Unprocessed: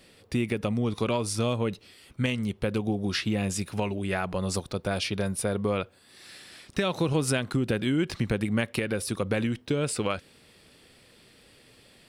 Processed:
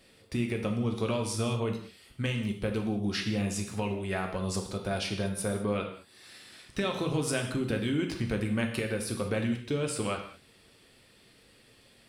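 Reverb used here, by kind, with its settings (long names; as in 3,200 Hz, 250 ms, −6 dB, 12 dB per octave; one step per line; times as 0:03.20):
reverb whose tail is shaped and stops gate 240 ms falling, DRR 2.5 dB
level −5 dB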